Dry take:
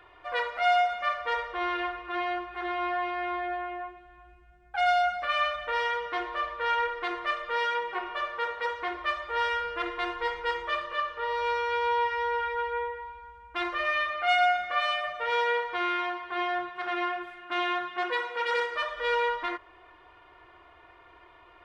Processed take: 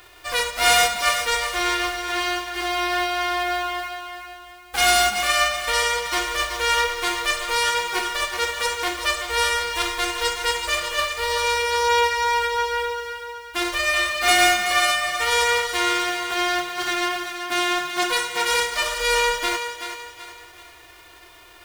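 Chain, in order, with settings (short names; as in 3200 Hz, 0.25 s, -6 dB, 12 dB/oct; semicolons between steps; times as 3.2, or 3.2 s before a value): spectral whitening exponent 0.3; thinning echo 0.379 s, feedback 41%, high-pass 360 Hz, level -8 dB; gain +6.5 dB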